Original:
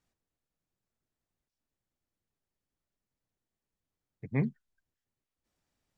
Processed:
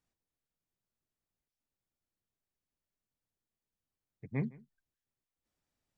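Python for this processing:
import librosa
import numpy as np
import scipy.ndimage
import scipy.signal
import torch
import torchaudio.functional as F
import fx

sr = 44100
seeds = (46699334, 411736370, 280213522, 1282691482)

y = x + 10.0 ** (-22.5 / 20.0) * np.pad(x, (int(160 * sr / 1000.0), 0))[:len(x)]
y = F.gain(torch.from_numpy(y), -5.0).numpy()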